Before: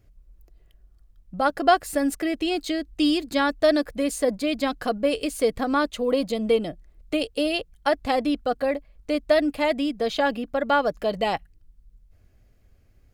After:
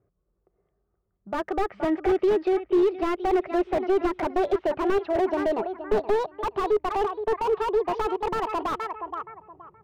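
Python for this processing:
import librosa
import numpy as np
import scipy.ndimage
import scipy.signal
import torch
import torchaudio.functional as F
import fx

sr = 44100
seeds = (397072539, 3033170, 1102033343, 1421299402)

p1 = fx.speed_glide(x, sr, from_pct=101, to_pct=166)
p2 = fx.air_absorb(p1, sr, metres=64.0)
p3 = p2 + fx.echo_feedback(p2, sr, ms=472, feedback_pct=27, wet_db=-14, dry=0)
p4 = fx.env_lowpass(p3, sr, base_hz=970.0, full_db=-21.0)
p5 = fx.cabinet(p4, sr, low_hz=150.0, low_slope=12, high_hz=2700.0, hz=(260.0, 400.0, 1200.0), db=(-8, 7, 8))
p6 = fx.rider(p5, sr, range_db=4, speed_s=0.5)
y = fx.slew_limit(p6, sr, full_power_hz=56.0)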